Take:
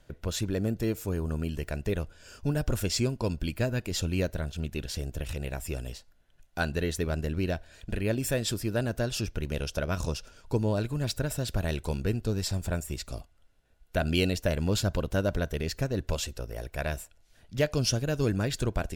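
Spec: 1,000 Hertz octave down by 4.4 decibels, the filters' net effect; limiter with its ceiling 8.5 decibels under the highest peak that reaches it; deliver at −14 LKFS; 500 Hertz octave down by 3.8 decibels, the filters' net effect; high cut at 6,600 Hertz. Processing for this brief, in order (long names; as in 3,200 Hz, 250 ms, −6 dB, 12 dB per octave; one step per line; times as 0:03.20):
low-pass filter 6,600 Hz
parametric band 500 Hz −3.5 dB
parametric band 1,000 Hz −5 dB
level +20 dB
brickwall limiter −1 dBFS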